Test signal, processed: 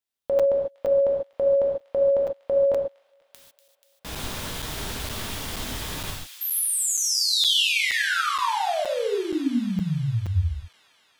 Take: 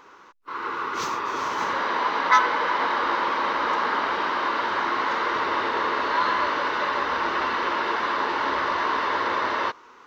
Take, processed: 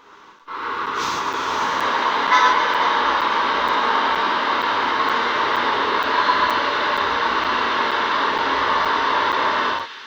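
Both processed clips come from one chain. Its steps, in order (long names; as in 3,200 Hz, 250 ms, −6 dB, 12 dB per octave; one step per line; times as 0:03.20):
parametric band 3,400 Hz +5.5 dB 0.42 octaves
delay with a high-pass on its return 242 ms, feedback 74%, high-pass 2,400 Hz, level −10 dB
reverb whose tail is shaped and stops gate 170 ms flat, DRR −2.5 dB
regular buffer underruns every 0.47 s, samples 256, zero, from 0:00.39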